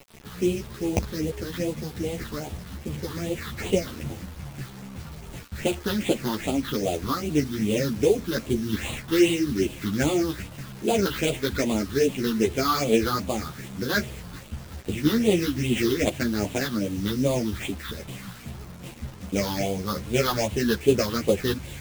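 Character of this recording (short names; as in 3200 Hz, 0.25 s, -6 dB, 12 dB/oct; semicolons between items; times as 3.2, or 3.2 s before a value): aliases and images of a low sample rate 5700 Hz, jitter 20%; phasing stages 6, 2.5 Hz, lowest notch 610–1500 Hz; a quantiser's noise floor 8-bit, dither none; a shimmering, thickened sound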